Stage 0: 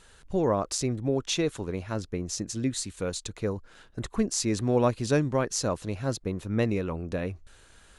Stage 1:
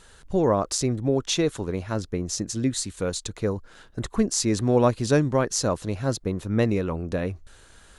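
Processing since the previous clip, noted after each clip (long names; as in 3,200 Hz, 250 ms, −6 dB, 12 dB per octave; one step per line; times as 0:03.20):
parametric band 2,500 Hz −3 dB 0.49 octaves
level +4 dB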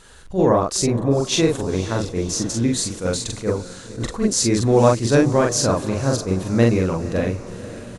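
double-tracking delay 43 ms −2 dB
feedback delay with all-pass diffusion 529 ms, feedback 55%, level −14.5 dB
level that may rise only so fast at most 220 dB per second
level +3.5 dB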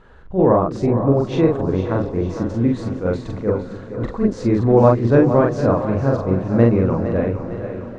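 low-pass filter 1,400 Hz 12 dB per octave
echo with a time of its own for lows and highs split 340 Hz, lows 247 ms, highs 457 ms, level −10.5 dB
level +2 dB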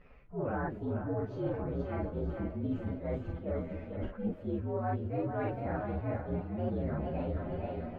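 partials spread apart or drawn together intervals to 122%
reversed playback
downward compressor 6 to 1, threshold −26 dBFS, peak gain reduction 16 dB
reversed playback
high-frequency loss of the air 300 metres
level −5 dB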